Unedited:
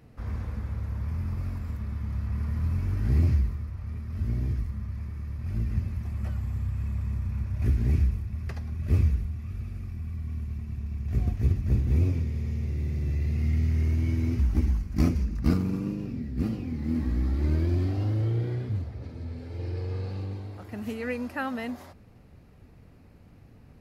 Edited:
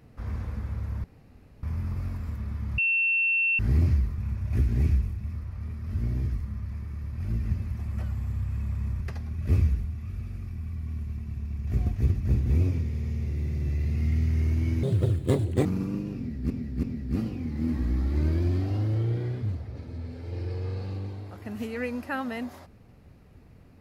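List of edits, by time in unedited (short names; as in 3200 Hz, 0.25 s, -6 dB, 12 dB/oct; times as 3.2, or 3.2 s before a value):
1.04 insert room tone 0.59 s
2.19–3 bleep 2700 Hz -21 dBFS
7.27–8.42 move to 3.59
14.24–15.58 speed 163%
16.1–16.43 loop, 3 plays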